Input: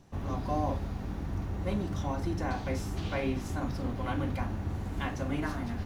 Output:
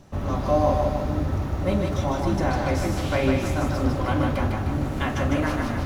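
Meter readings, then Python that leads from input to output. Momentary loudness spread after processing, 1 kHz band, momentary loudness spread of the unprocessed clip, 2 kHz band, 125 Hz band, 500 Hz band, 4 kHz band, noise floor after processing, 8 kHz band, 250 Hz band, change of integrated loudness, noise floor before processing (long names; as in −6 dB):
4 LU, +9.5 dB, 4 LU, +9.5 dB, +8.5 dB, +12.5 dB, +9.5 dB, −29 dBFS, +9.5 dB, +9.0 dB, +9.5 dB, −38 dBFS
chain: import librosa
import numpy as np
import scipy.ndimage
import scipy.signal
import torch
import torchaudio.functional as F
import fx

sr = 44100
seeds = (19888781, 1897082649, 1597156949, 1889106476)

p1 = fx.small_body(x, sr, hz=(590.0, 1300.0), ring_ms=100, db=10)
p2 = p1 + fx.echo_split(p1, sr, split_hz=410.0, low_ms=576, high_ms=153, feedback_pct=52, wet_db=-3.5, dry=0)
y = p2 * 10.0 ** (7.5 / 20.0)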